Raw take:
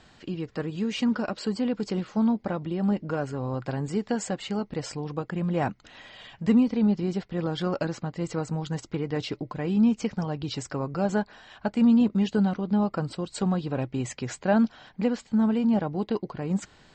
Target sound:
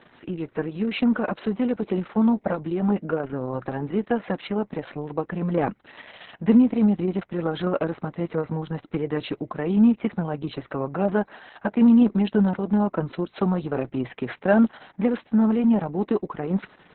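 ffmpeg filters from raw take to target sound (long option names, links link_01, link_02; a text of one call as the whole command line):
ffmpeg -i in.wav -af "highpass=180,lowpass=2400,volume=5.5dB" -ar 48000 -c:a libopus -b:a 6k out.opus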